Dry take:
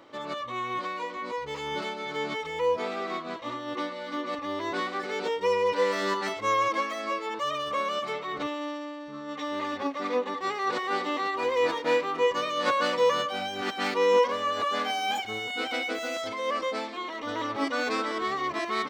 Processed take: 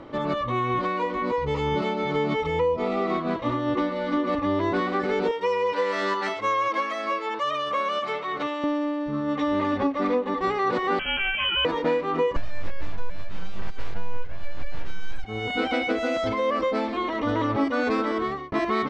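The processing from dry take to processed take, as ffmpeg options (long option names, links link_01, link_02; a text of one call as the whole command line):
ffmpeg -i in.wav -filter_complex "[0:a]asettb=1/sr,asplit=3[link_01][link_02][link_03];[link_01]atrim=end=1.364[link_04];[link_02]atrim=start=1.36:end=3.15,asetpts=PTS-STARTPTS,afade=type=in:duration=0.004:curve=qsin,afade=type=out:start_time=1.786:duration=0.004:curve=qsin,asuperstop=centerf=1600:order=4:qfactor=5.4[link_05];[link_03]atrim=start=3.146[link_06];[link_04][link_05]acrossfade=duration=0.004:curve1=hsin:curve2=qsin[link_07];[link_07][link_06]acrossfade=duration=0.004:curve1=qsin:curve2=hsin,asettb=1/sr,asplit=3[link_08][link_09][link_10];[link_08]atrim=end=5.314[link_11];[link_09]atrim=start=5.31:end=8.64,asetpts=PTS-STARTPTS,afade=type=in:duration=0.004:curve=qsin,afade=type=out:start_time=3.326:duration=0.004:curve=qsin,highpass=frequency=980:poles=1[link_12];[link_10]atrim=start=8.636[link_13];[link_11][link_12]acrossfade=duration=0.004:curve1=hsin:curve2=qsin[link_14];[link_14][link_13]acrossfade=duration=0.004:curve1=qsin:curve2=hsin,asettb=1/sr,asplit=3[link_15][link_16][link_17];[link_15]atrim=end=10.994[link_18];[link_16]atrim=start=10.99:end=11.65,asetpts=PTS-STARTPTS,afade=type=in:duration=0.004:curve=qsin,afade=type=out:start_time=0.656:duration=0.004:curve=qsin,lowpass=frequency=3000:width_type=q:width=0.5098,lowpass=frequency=3000:width_type=q:width=0.6013,lowpass=frequency=3000:width_type=q:width=0.9,lowpass=frequency=3000:width_type=q:width=2.563,afreqshift=-3500[link_19];[link_17]atrim=start=11.646[link_20];[link_18][link_19]acrossfade=duration=0.004:curve1=hsin:curve2=qsin[link_21];[link_21][link_20]acrossfade=duration=0.004:curve1=qsin:curve2=hsin,asettb=1/sr,asplit=3[link_22][link_23][link_24];[link_22]atrim=end=12.364[link_25];[link_23]atrim=start=12.36:end=15.24,asetpts=PTS-STARTPTS,afade=type=in:duration=0.004:curve=qsin,afade=type=out:start_time=2.876:duration=0.004:curve=qsin,aeval=exprs='abs(val(0))':channel_layout=same[link_26];[link_24]atrim=start=15.236[link_27];[link_25][link_26]acrossfade=duration=0.004:curve1=hsin:curve2=qsin[link_28];[link_28][link_27]acrossfade=duration=0.004:curve1=qsin:curve2=hsin,asplit=2[link_29][link_30];[link_29]atrim=end=18.52,asetpts=PTS-STARTPTS,afade=type=out:start_time=18.02:duration=0.5[link_31];[link_30]atrim=start=18.52,asetpts=PTS-STARTPTS,afade=type=in:duration=0.004:curve=hsin[link_32];[link_31][link_32]concat=n=2:v=0:a=1,aemphasis=mode=reproduction:type=riaa,acompressor=threshold=-28dB:ratio=6,volume=7.5dB" out.wav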